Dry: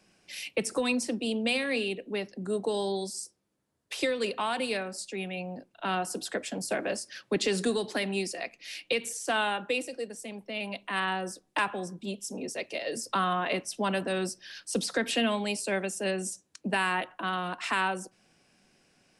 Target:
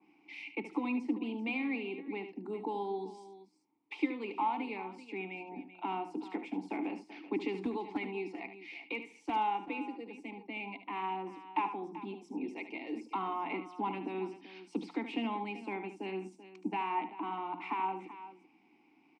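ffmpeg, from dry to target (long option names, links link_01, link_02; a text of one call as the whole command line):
ffmpeg -i in.wav -filter_complex "[0:a]bandreject=frequency=60:width_type=h:width=6,bandreject=frequency=120:width_type=h:width=6,bandreject=frequency=180:width_type=h:width=6,asplit=2[link_01][link_02];[link_02]acompressor=threshold=-40dB:ratio=6,volume=-0.5dB[link_03];[link_01][link_03]amix=inputs=2:normalize=0,asplit=2[link_04][link_05];[link_05]highpass=frequency=720:poles=1,volume=8dB,asoftclip=type=tanh:threshold=-13.5dB[link_06];[link_04][link_06]amix=inputs=2:normalize=0,lowpass=frequency=1600:poles=1,volume=-6dB,asplit=3[link_07][link_08][link_09];[link_07]bandpass=frequency=300:width_type=q:width=8,volume=0dB[link_10];[link_08]bandpass=frequency=870:width_type=q:width=8,volume=-6dB[link_11];[link_09]bandpass=frequency=2240:width_type=q:width=8,volume=-9dB[link_12];[link_10][link_11][link_12]amix=inputs=3:normalize=0,asettb=1/sr,asplit=3[link_13][link_14][link_15];[link_13]atrim=end=7.624[link_16];[link_14]atrim=start=7.62:end=9.36,asetpts=PTS-STARTPTS,afade=type=in:duration=0.004:curve=qsin,afade=type=out:start_time=1.736:duration=0.004:curve=qsin,asoftclip=type=hard:threshold=-34dB[link_17];[link_15]atrim=start=9.356[link_18];[link_16][link_17]acrossfade=duration=0.004:curve1=hsin:curve2=qsin[link_19];[link_19][link_18]acrossfade=duration=0.004:curve1=qsin:curve2=hsin,aecho=1:1:74|385:0.299|0.188,adynamicequalizer=threshold=0.00141:dfrequency=2100:dqfactor=0.7:tfrequency=2100:tqfactor=0.7:attack=5:release=100:ratio=0.375:range=3:mode=cutabove:tftype=highshelf,volume=7dB" out.wav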